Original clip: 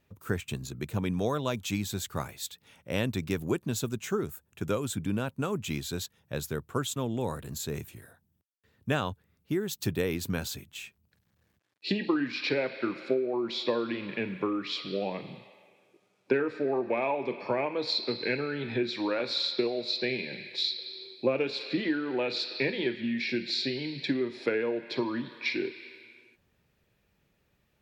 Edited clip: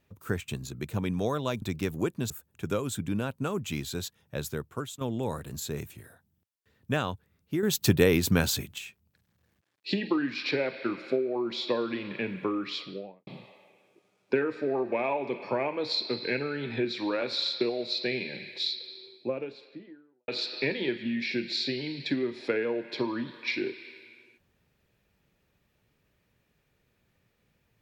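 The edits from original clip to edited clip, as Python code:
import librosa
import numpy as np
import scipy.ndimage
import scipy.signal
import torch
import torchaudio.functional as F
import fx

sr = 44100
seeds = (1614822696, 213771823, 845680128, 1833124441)

y = fx.studio_fade_out(x, sr, start_s=14.66, length_s=0.59)
y = fx.studio_fade_out(y, sr, start_s=20.48, length_s=1.78)
y = fx.edit(y, sr, fx.cut(start_s=1.62, length_s=1.48),
    fx.cut(start_s=3.78, length_s=0.5),
    fx.fade_out_to(start_s=6.5, length_s=0.49, floor_db=-11.0),
    fx.clip_gain(start_s=9.61, length_s=1.15, db=8.0), tone=tone)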